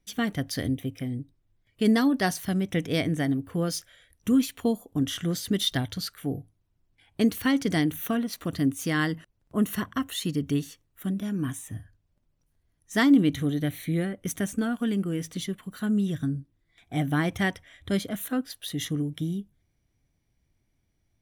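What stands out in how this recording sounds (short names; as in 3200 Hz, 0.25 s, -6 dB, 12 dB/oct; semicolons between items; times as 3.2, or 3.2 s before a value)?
noise floor -73 dBFS; spectral tilt -5.5 dB/oct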